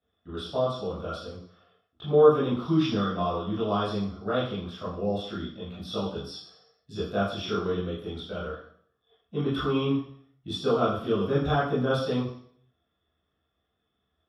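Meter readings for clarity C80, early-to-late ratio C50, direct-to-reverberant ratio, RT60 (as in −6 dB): 6.5 dB, 3.0 dB, −10.5 dB, 0.60 s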